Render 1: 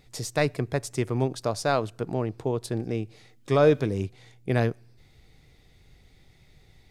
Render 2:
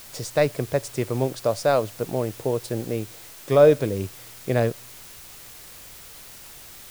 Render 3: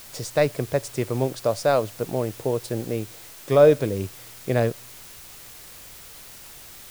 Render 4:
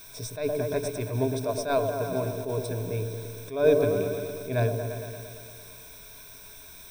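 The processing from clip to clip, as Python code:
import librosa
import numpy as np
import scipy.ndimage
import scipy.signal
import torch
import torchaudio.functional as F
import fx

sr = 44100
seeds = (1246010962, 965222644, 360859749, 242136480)

y1 = fx.peak_eq(x, sr, hz=550.0, db=8.5, octaves=0.46)
y1 = fx.dmg_noise_colour(y1, sr, seeds[0], colour='white', level_db=-44.0)
y2 = y1
y3 = fx.ripple_eq(y2, sr, per_octave=1.6, db=15)
y3 = fx.echo_opening(y3, sr, ms=115, hz=750, octaves=1, feedback_pct=70, wet_db=-6)
y3 = fx.attack_slew(y3, sr, db_per_s=130.0)
y3 = y3 * librosa.db_to_amplitude(-6.5)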